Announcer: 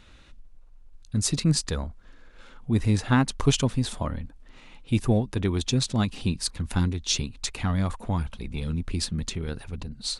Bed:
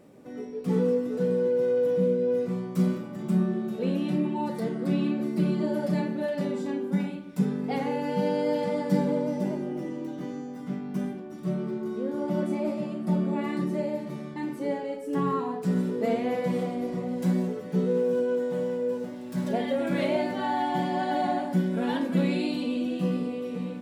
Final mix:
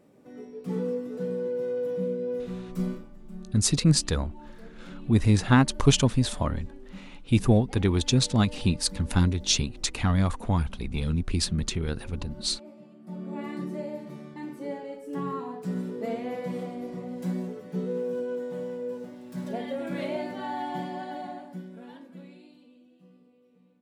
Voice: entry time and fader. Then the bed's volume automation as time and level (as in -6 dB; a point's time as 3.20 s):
2.40 s, +2.0 dB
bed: 2.93 s -5.5 dB
3.19 s -18.5 dB
12.97 s -18.5 dB
13.40 s -5.5 dB
20.76 s -5.5 dB
22.90 s -29.5 dB